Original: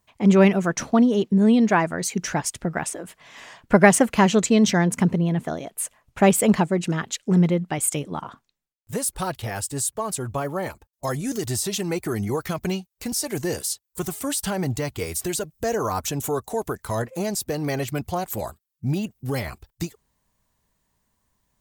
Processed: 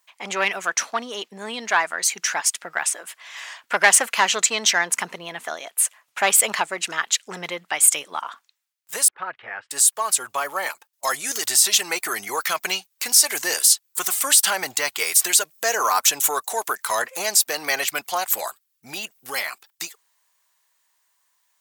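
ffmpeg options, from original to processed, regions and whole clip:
ffmpeg -i in.wav -filter_complex "[0:a]asettb=1/sr,asplit=3[link_01][link_02][link_03];[link_01]atrim=end=9.084[link_04];[link_02]atrim=start=9.08:end=9.71,asetpts=PTS-STARTPTS,afade=type=in:duration=0.004:curve=qsin,afade=type=out:start_time=0.626:duration=0.004:curve=qsin,lowpass=frequency=1900:width=0.5412,lowpass=frequency=1900:width=1.3066,equalizer=frequency=850:width=0.8:gain=-8[link_05];[link_03]atrim=start=9.706[link_06];[link_04][link_05]acrossfade=duration=0.004:curve1=hsin:curve2=qsin[link_07];[link_07][link_06]acrossfade=duration=0.004:curve1=qsin:curve2=hsin,acontrast=81,highpass=1200,dynaudnorm=framelen=200:gausssize=31:maxgain=7dB" out.wav

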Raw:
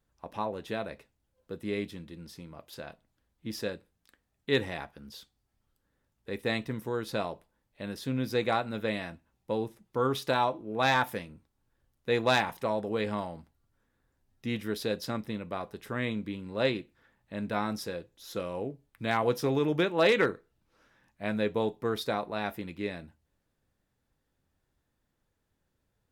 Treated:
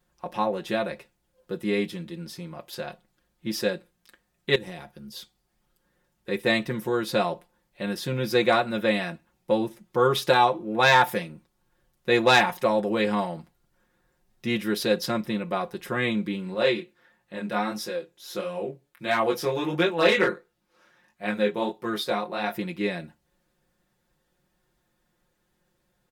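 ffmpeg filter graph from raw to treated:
ffmpeg -i in.wav -filter_complex "[0:a]asettb=1/sr,asplit=3[link_01][link_02][link_03];[link_01]atrim=end=4.554[link_04];[link_02]atrim=start=4.55:end=5.16,asetpts=PTS-STARTPTS,afade=type=in:duration=0.004:curve=qsin,afade=type=out:start_time=0.606:duration=0.004:curve=qsin,acompressor=threshold=-35dB:ratio=6:attack=3.2:release=140:knee=1:detection=peak,equalizer=frequency=1400:width=0.35:gain=-9.5[link_05];[link_03]atrim=start=5.156[link_06];[link_04][link_05]acrossfade=duration=0.004:curve1=hsin:curve2=qsin[link_07];[link_07][link_06]acrossfade=duration=0.004:curve1=qsin:curve2=hsin,asettb=1/sr,asplit=3[link_08][link_09][link_10];[link_08]atrim=end=16.544[link_11];[link_09]atrim=start=16.54:end=22.55,asetpts=PTS-STARTPTS,afade=type=in:duration=0.004:curve=qsin,afade=type=out:start_time=6.006:duration=0.004:curve=qsin,lowshelf=frequency=130:gain=-10.5,flanger=delay=18:depth=6.4:speed=1.5[link_12];[link_10]atrim=start=22.546[link_13];[link_11][link_12]acrossfade=duration=0.004:curve1=hsin:curve2=qsin[link_14];[link_14][link_13]acrossfade=duration=0.004:curve1=qsin:curve2=hsin,lowshelf=frequency=130:gain=-6,aecho=1:1:5.6:0.85,volume=6dB" out.wav

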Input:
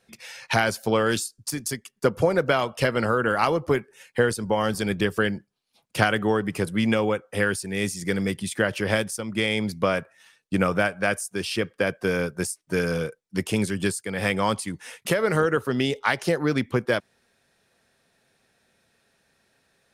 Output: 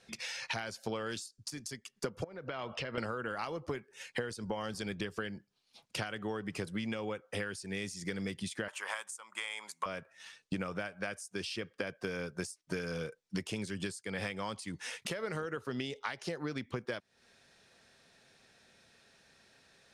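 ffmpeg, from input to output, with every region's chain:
ffmpeg -i in.wav -filter_complex "[0:a]asettb=1/sr,asplit=3[link_01][link_02][link_03];[link_01]atrim=end=2.244[link_04];[link_02]atrim=start=2.24:end=2.98,asetpts=PTS-STARTPTS,afade=type=in:duration=0.004:curve=qsin,afade=type=out:start_time=0.736:duration=0.004:curve=qsin,lowpass=3500,acompressor=threshold=-35dB:ratio=4:attack=3.2:release=140:knee=1:detection=peak[link_05];[link_03]atrim=start=2.976[link_06];[link_04][link_05]acrossfade=duration=0.004:curve1=hsin:curve2=qsin[link_07];[link_07][link_06]acrossfade=duration=0.004:curve1=qsin:curve2=hsin,asettb=1/sr,asplit=3[link_08][link_09][link_10];[link_08]atrim=end=8.684[link_11];[link_09]atrim=start=8.68:end=9.86,asetpts=PTS-STARTPTS,afade=type=in:duration=0.004:curve=qsin,afade=type=out:start_time=1.176:duration=0.004:curve=qsin,highpass=frequency=1000:width_type=q:width=3.8,highshelf=frequency=6200:width_type=q:width=3:gain=6[link_12];[link_10]atrim=start=9.856[link_13];[link_11][link_12]acrossfade=duration=0.004:curve1=hsin:curve2=qsin[link_14];[link_14][link_13]acrossfade=duration=0.004:curve1=qsin:curve2=hsin,equalizer=frequency=6000:width_type=o:width=2.2:gain=10.5,acompressor=threshold=-34dB:ratio=16,aemphasis=mode=reproduction:type=50kf,volume=1dB" out.wav

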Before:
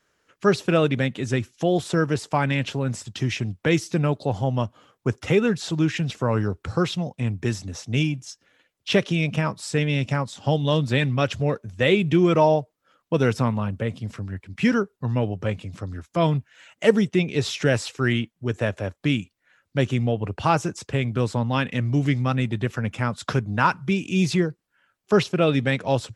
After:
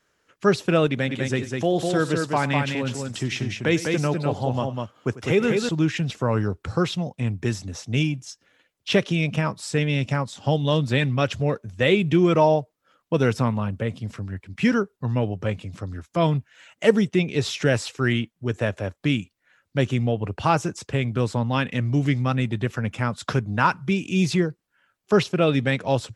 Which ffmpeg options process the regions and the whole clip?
ffmpeg -i in.wav -filter_complex "[0:a]asettb=1/sr,asplit=3[link_01][link_02][link_03];[link_01]atrim=end=0.874[link_04];[link_02]atrim=start=0.87:end=5.69,asetpts=PTS-STARTPTS,afade=type=in:duration=0.004:curve=qsin,afade=type=out:start_time=4.816:duration=0.004:curve=qsin,lowshelf=frequency=110:gain=-8,aecho=1:1:94|201:0.141|0.631,atrim=end_sample=212562[link_05];[link_03]atrim=start=5.686[link_06];[link_04][link_05]acrossfade=duration=0.004:curve1=hsin:curve2=qsin[link_07];[link_07][link_06]acrossfade=duration=0.004:curve1=qsin:curve2=hsin" out.wav

